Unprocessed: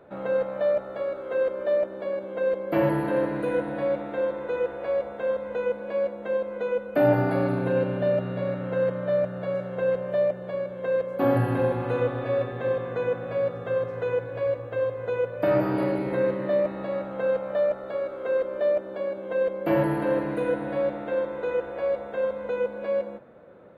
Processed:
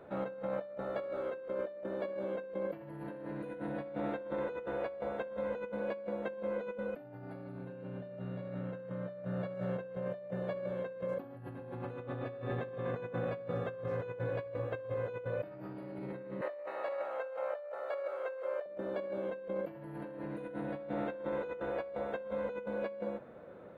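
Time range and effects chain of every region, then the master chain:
16.41–18.66 HPF 510 Hz 24 dB/oct + bell 3600 Hz -7 dB 0.28 oct
whole clip: dynamic EQ 160 Hz, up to +5 dB, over -37 dBFS, Q 0.8; negative-ratio compressor -33 dBFS, ratio -1; gain -7.5 dB

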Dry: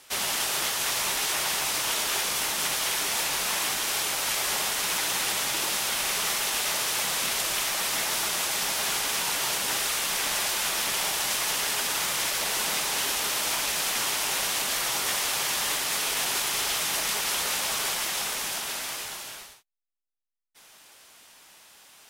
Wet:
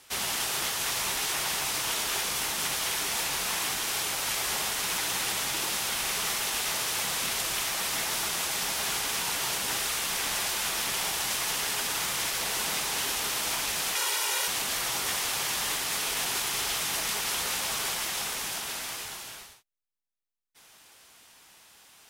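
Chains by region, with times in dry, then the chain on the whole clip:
13.95–14.48 HPF 370 Hz + comb 2.1 ms, depth 67%
whole clip: bell 70 Hz +5.5 dB 2.5 oct; notch 590 Hz, Q 16; gain -2.5 dB

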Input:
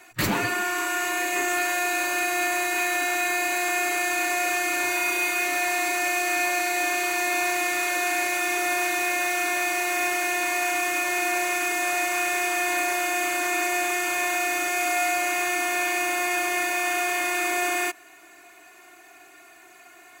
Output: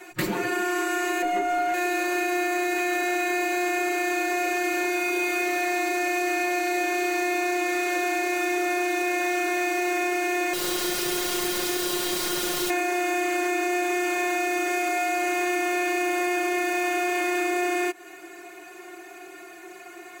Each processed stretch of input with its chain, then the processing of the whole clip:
1.22–1.74 tilt -3 dB/oct + comb 4.2 ms, depth 98%
10.53–12.7 low shelf 88 Hz +6.5 dB + wrapped overs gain 22 dB
whole clip: bell 370 Hz +10 dB 1 oct; compressor, threshold -28 dBFS; comb 5.6 ms, depth 94%

